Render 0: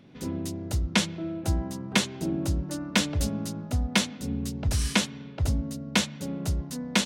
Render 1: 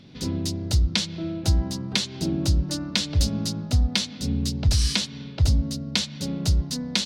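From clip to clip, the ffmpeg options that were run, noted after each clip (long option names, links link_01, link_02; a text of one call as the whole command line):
ffmpeg -i in.wav -af "equalizer=frequency=4500:width_type=o:width=1.2:gain=14.5,acompressor=threshold=-22dB:ratio=5,lowshelf=frequency=180:gain=10" out.wav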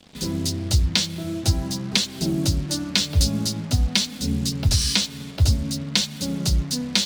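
ffmpeg -i in.wav -af "acrusher=bits=6:mix=0:aa=0.5,highshelf=frequency=4900:gain=5.5,flanger=delay=3.5:depth=8.8:regen=-41:speed=0.48:shape=triangular,volume=5.5dB" out.wav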